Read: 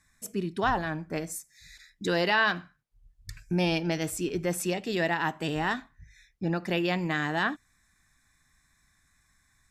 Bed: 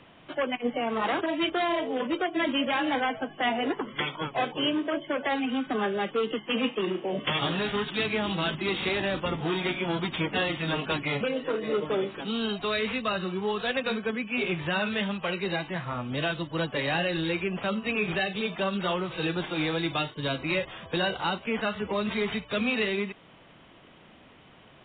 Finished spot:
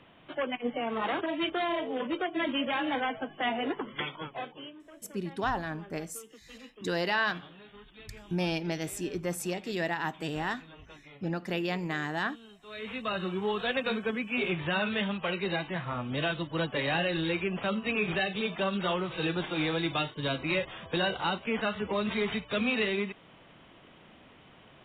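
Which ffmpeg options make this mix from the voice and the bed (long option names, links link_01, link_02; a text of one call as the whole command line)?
ffmpeg -i stem1.wav -i stem2.wav -filter_complex "[0:a]adelay=4800,volume=-4dB[link_01];[1:a]volume=18dB,afade=type=out:start_time=3.92:duration=0.81:silence=0.105925,afade=type=in:start_time=12.65:duration=0.61:silence=0.0841395[link_02];[link_01][link_02]amix=inputs=2:normalize=0" out.wav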